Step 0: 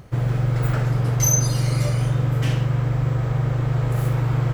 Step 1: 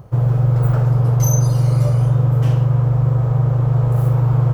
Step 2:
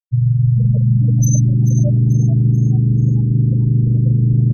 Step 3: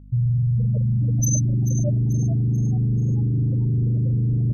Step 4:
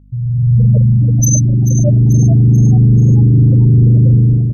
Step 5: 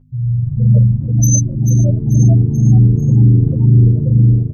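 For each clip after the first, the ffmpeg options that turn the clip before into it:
ffmpeg -i in.wav -af "equalizer=frequency=125:width_type=o:width=1:gain=7,equalizer=frequency=250:width_type=o:width=1:gain=-4,equalizer=frequency=500:width_type=o:width=1:gain=4,equalizer=frequency=1000:width_type=o:width=1:gain=5,equalizer=frequency=2000:width_type=o:width=1:gain=-9,equalizer=frequency=4000:width_type=o:width=1:gain=-5,equalizer=frequency=8000:width_type=o:width=1:gain=-5" out.wav
ffmpeg -i in.wav -filter_complex "[0:a]afftfilt=real='re*gte(hypot(re,im),0.316)':imag='im*gte(hypot(re,im),0.316)':win_size=1024:overlap=0.75,asplit=5[link_01][link_02][link_03][link_04][link_05];[link_02]adelay=438,afreqshift=80,volume=-12dB[link_06];[link_03]adelay=876,afreqshift=160,volume=-19.3dB[link_07];[link_04]adelay=1314,afreqshift=240,volume=-26.7dB[link_08];[link_05]adelay=1752,afreqshift=320,volume=-34dB[link_09];[link_01][link_06][link_07][link_08][link_09]amix=inputs=5:normalize=0,areverse,acompressor=mode=upward:threshold=-21dB:ratio=2.5,areverse,volume=1.5dB" out.wav
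ffmpeg -i in.wav -filter_complex "[0:a]acrossover=split=630[link_01][link_02];[link_01]alimiter=limit=-16dB:level=0:latency=1:release=18[link_03];[link_03][link_02]amix=inputs=2:normalize=0,aeval=exprs='val(0)+0.00794*(sin(2*PI*50*n/s)+sin(2*PI*2*50*n/s)/2+sin(2*PI*3*50*n/s)/3+sin(2*PI*4*50*n/s)/4+sin(2*PI*5*50*n/s)/5)':channel_layout=same" out.wav
ffmpeg -i in.wav -af "dynaudnorm=framelen=180:gausssize=5:maxgain=15dB" out.wav
ffmpeg -i in.wav -filter_complex "[0:a]asplit=2[link_01][link_02];[link_02]adelay=9.2,afreqshift=-2[link_03];[link_01][link_03]amix=inputs=2:normalize=1,volume=1dB" out.wav

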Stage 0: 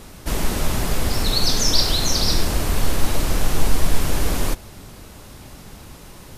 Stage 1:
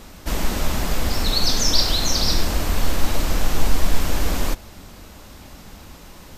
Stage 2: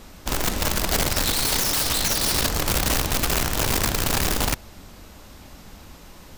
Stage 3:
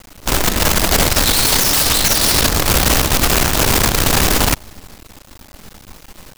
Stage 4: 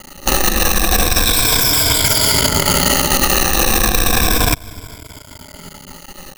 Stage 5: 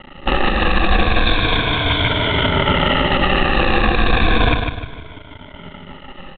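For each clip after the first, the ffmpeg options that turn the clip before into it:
ffmpeg -i in.wav -af "equalizer=frequency=125:width_type=o:width=0.33:gain=-11,equalizer=frequency=400:width_type=o:width=0.33:gain=-4,equalizer=frequency=10000:width_type=o:width=0.33:gain=-8" out.wav
ffmpeg -i in.wav -af "aeval=exprs='(mod(5.62*val(0)+1,2)-1)/5.62':channel_layout=same,volume=-2.5dB" out.wav
ffmpeg -i in.wav -af "acrusher=bits=5:dc=4:mix=0:aa=0.000001,volume=7.5dB" out.wav
ffmpeg -i in.wav -af "afftfilt=real='re*pow(10,15/40*sin(2*PI*(1.7*log(max(b,1)*sr/1024/100)/log(2)-(-0.33)*(pts-256)/sr)))':imag='im*pow(10,15/40*sin(2*PI*(1.7*log(max(b,1)*sr/1024/100)/log(2)-(-0.33)*(pts-256)/sr)))':win_size=1024:overlap=0.75,acompressor=threshold=-13dB:ratio=6,volume=2.5dB" out.wav
ffmpeg -i in.wav -filter_complex "[0:a]asplit=2[link_01][link_02];[link_02]aecho=0:1:151|302|453|604:0.531|0.181|0.0614|0.0209[link_03];[link_01][link_03]amix=inputs=2:normalize=0,aresample=8000,aresample=44100" out.wav

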